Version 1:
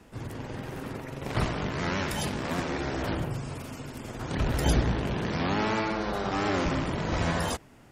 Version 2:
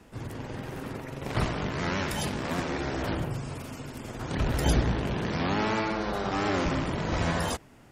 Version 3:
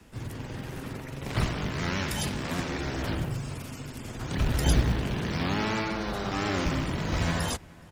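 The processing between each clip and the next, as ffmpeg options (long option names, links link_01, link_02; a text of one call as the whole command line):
ffmpeg -i in.wav -af anull out.wav
ffmpeg -i in.wav -filter_complex "[0:a]equalizer=frequency=640:width_type=o:width=2.9:gain=-6,acrossover=split=220|480|5600[link_01][link_02][link_03][link_04];[link_01]acrusher=bits=5:mode=log:mix=0:aa=0.000001[link_05];[link_05][link_02][link_03][link_04]amix=inputs=4:normalize=0,asplit=2[link_06][link_07];[link_07]adelay=419.8,volume=-23dB,highshelf=frequency=4000:gain=-9.45[link_08];[link_06][link_08]amix=inputs=2:normalize=0,volume=2.5dB" out.wav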